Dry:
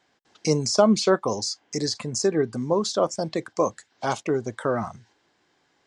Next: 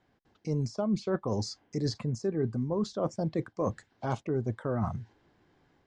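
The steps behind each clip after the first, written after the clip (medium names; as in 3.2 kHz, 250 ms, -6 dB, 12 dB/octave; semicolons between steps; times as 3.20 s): level rider gain up to 3.5 dB; RIAA curve playback; reverse; compression 6:1, threshold -22 dBFS, peak gain reduction 15 dB; reverse; trim -5 dB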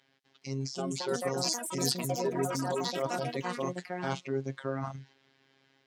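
robot voice 135 Hz; frequency weighting D; ever faster or slower copies 418 ms, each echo +5 st, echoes 3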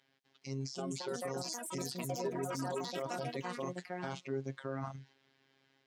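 peak limiter -23 dBFS, peak gain reduction 10.5 dB; trim -4.5 dB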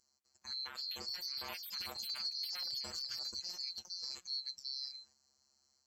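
split-band scrambler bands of 4 kHz; trim -3.5 dB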